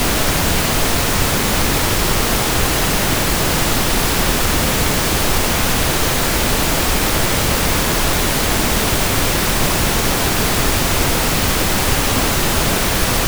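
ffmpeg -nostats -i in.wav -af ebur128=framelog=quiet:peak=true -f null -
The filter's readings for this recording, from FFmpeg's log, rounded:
Integrated loudness:
  I:         -15.5 LUFS
  Threshold: -25.5 LUFS
Loudness range:
  LRA:         0.1 LU
  Threshold: -35.5 LUFS
  LRA low:   -15.5 LUFS
  LRA high:  -15.5 LUFS
True peak:
  Peak:       -1.7 dBFS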